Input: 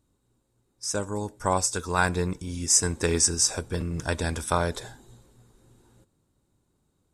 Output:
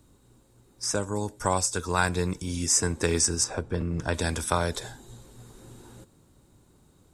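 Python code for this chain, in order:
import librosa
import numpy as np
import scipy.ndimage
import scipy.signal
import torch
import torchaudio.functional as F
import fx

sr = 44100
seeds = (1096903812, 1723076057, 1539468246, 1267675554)

y = fx.lowpass(x, sr, hz=1700.0, slope=6, at=(3.44, 4.14))
y = fx.band_squash(y, sr, depth_pct=40)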